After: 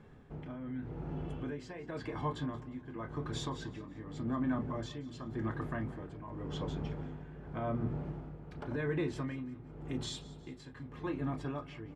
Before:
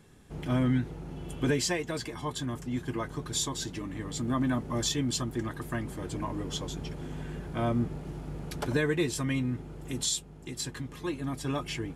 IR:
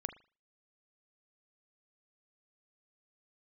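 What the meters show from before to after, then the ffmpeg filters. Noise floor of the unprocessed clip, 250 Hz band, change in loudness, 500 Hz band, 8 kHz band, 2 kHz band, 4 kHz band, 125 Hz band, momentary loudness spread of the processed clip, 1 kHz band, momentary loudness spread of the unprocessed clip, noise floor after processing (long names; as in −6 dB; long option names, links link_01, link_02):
−47 dBFS, −6.5 dB, −7.5 dB, −6.5 dB, −20.5 dB, −9.0 dB, −13.0 dB, −6.0 dB, 11 LU, −5.0 dB, 11 LU, −51 dBFS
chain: -filter_complex "[0:a]lowpass=1600,bandreject=frequency=60:width_type=h:width=6,bandreject=frequency=120:width_type=h:width=6,bandreject=frequency=180:width_type=h:width=6,bandreject=frequency=240:width_type=h:width=6,bandreject=frequency=300:width_type=h:width=6,bandreject=frequency=360:width_type=h:width=6,asplit=2[link_01][link_02];[link_02]acompressor=threshold=-37dB:ratio=6,volume=-1.5dB[link_03];[link_01][link_03]amix=inputs=2:normalize=0,alimiter=limit=-22dB:level=0:latency=1:release=76,tremolo=f=0.89:d=0.72,crystalizer=i=2:c=0,aecho=1:1:179|358|537:0.112|0.0494|0.0217[link_04];[1:a]atrim=start_sample=2205,atrim=end_sample=3087,asetrate=61740,aresample=44100[link_05];[link_04][link_05]afir=irnorm=-1:irlink=0,volume=1dB"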